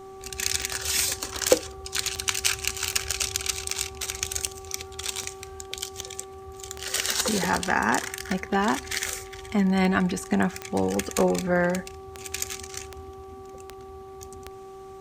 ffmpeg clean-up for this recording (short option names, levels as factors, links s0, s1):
-af "adeclick=t=4,bandreject=f=384.9:t=h:w=4,bandreject=f=769.8:t=h:w=4,bandreject=f=1154.7:t=h:w=4"